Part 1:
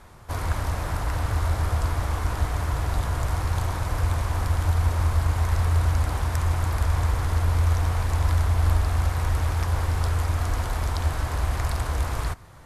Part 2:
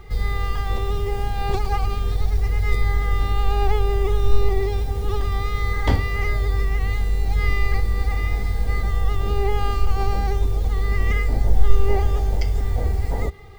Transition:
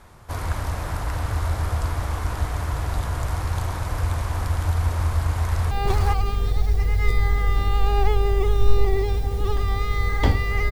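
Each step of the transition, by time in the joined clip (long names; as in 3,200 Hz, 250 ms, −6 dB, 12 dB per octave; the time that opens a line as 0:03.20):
part 1
0:05.45–0:05.71: delay throw 420 ms, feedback 10%, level −1 dB
0:05.71: continue with part 2 from 0:01.35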